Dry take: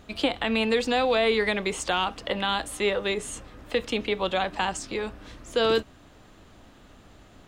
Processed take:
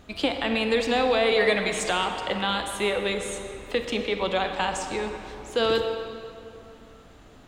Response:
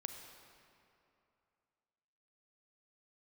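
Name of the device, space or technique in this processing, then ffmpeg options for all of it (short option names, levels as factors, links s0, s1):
stairwell: -filter_complex "[0:a]asettb=1/sr,asplit=3[s0][s1][s2];[s0]atrim=end=1.314[s3];[s1]atrim=start=1.31:end=1.9,asetpts=PTS-STARTPTS,afade=t=in:d=0.004:c=qsin,afade=t=out:st=0.586:d=0.004:c=qsin,aecho=1:1:6.5:0.86,atrim=end_sample=26019[s4];[s2]atrim=start=1.896[s5];[s3][s4]acrossfade=d=0.004:c1=hsin:c2=qsin[s6];[s6][s5]acrossfade=d=0.004:c1=qsin:c2=hsin[s7];[1:a]atrim=start_sample=2205[s8];[s7][s8]afir=irnorm=-1:irlink=0,volume=1.41"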